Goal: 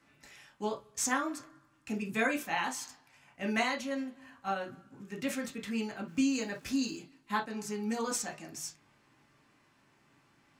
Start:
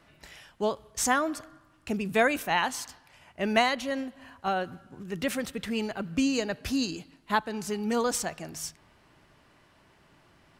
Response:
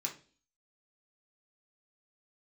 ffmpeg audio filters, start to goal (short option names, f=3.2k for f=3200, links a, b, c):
-filter_complex "[0:a]asettb=1/sr,asplit=3[a][b][c];[a]atrim=end=6.084[d];[b]atrim=start=6.08:end=6.98,asetpts=PTS-STARTPTS,afade=t=in:d=0.004:c=qsin,afade=t=out:st=0.896:d=0.004:c=qsin,aeval=exprs='val(0)*gte(abs(val(0)),0.00335)':c=same[e];[c]atrim=start=6.976[f];[d][e]acrossfade=d=0.004:c1=hsin:c2=qsin[g];[g][f]acrossfade=d=0.004:c1=qsin:c2=hsin[h];[1:a]atrim=start_sample=2205,atrim=end_sample=3087[i];[h][i]afir=irnorm=-1:irlink=0,volume=-6dB"